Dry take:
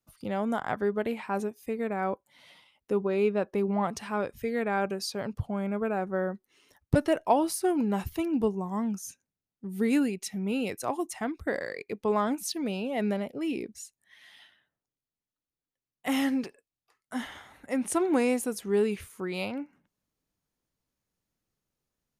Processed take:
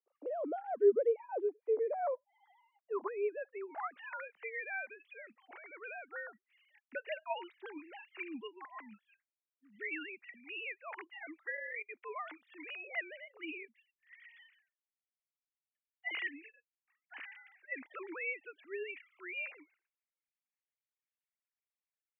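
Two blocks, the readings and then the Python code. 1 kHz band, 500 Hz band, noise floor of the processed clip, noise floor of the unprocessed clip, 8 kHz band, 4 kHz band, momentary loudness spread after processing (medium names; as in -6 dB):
-11.5 dB, -7.5 dB, under -85 dBFS, under -85 dBFS, under -40 dB, -11.5 dB, 17 LU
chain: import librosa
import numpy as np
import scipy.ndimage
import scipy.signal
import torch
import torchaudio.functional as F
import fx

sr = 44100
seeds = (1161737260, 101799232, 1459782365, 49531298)

y = fx.sine_speech(x, sr)
y = fx.filter_sweep_bandpass(y, sr, from_hz=500.0, to_hz=2200.0, start_s=1.66, end_s=4.38, q=2.8)
y = y * librosa.db_to_amplitude(2.5)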